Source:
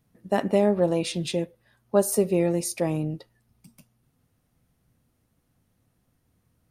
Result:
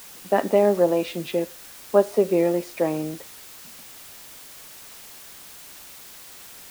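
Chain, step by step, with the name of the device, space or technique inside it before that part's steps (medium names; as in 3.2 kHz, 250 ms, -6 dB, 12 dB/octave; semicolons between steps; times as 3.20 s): wax cylinder (band-pass 290–2300 Hz; wow and flutter 27 cents; white noise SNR 18 dB); trim +4.5 dB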